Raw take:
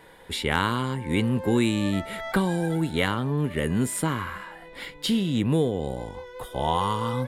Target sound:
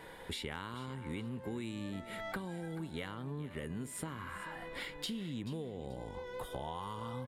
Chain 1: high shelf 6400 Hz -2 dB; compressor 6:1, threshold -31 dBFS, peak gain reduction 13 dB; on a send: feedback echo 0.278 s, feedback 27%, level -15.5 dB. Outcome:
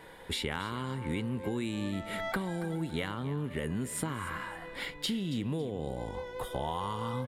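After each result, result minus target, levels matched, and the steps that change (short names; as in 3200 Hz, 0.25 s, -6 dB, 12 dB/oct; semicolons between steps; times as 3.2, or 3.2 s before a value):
echo 0.156 s early; compressor: peak gain reduction -7 dB
change: feedback echo 0.434 s, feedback 27%, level -15.5 dB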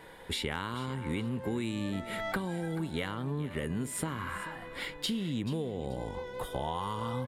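compressor: peak gain reduction -7 dB
change: compressor 6:1, threshold -39.5 dBFS, peak gain reduction 20 dB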